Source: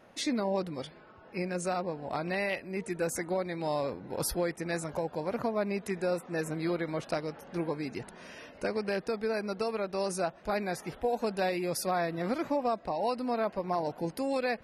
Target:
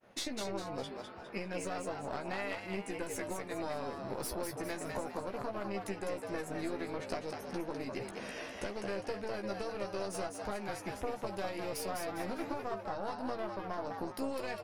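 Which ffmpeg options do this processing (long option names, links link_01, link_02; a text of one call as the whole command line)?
ffmpeg -i in.wav -filter_complex "[0:a]aeval=exprs='0.133*(cos(1*acos(clip(val(0)/0.133,-1,1)))-cos(1*PI/2))+0.0266*(cos(4*acos(clip(val(0)/0.133,-1,1)))-cos(4*PI/2))':channel_layout=same,acompressor=threshold=-39dB:ratio=6,asplit=6[link_01][link_02][link_03][link_04][link_05][link_06];[link_02]adelay=203,afreqshift=100,volume=-4.5dB[link_07];[link_03]adelay=406,afreqshift=200,volume=-12.7dB[link_08];[link_04]adelay=609,afreqshift=300,volume=-20.9dB[link_09];[link_05]adelay=812,afreqshift=400,volume=-29dB[link_10];[link_06]adelay=1015,afreqshift=500,volume=-37.2dB[link_11];[link_01][link_07][link_08][link_09][link_10][link_11]amix=inputs=6:normalize=0,agate=range=-33dB:threshold=-51dB:ratio=3:detection=peak,asplit=2[link_12][link_13];[link_13]adelay=15,volume=-7dB[link_14];[link_12][link_14]amix=inputs=2:normalize=0,volume=2dB" out.wav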